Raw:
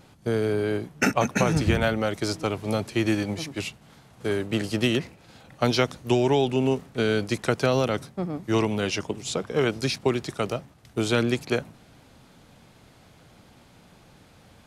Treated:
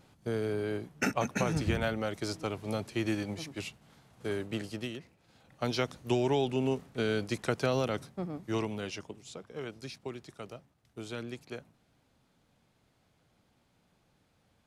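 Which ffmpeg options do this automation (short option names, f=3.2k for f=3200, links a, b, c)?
-af "volume=4dB,afade=t=out:st=4.43:d=0.55:silence=0.281838,afade=t=in:st=4.98:d=1.09:silence=0.251189,afade=t=out:st=8.18:d=1.11:silence=0.316228"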